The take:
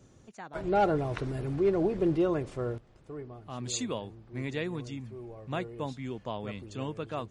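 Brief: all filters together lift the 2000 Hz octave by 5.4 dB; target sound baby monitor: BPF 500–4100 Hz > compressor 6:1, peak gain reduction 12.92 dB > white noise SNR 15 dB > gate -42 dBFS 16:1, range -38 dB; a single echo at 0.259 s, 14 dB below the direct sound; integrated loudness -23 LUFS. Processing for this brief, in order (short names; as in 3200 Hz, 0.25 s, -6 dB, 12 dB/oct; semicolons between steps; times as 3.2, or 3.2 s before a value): BPF 500–4100 Hz; bell 2000 Hz +7.5 dB; echo 0.259 s -14 dB; compressor 6:1, threshold -34 dBFS; white noise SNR 15 dB; gate -42 dBFS 16:1, range -38 dB; gain +17.5 dB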